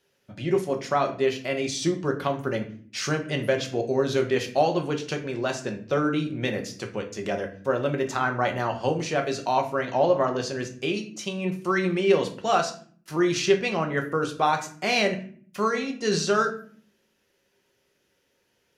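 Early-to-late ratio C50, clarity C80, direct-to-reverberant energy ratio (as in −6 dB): 11.0 dB, 15.5 dB, 3.0 dB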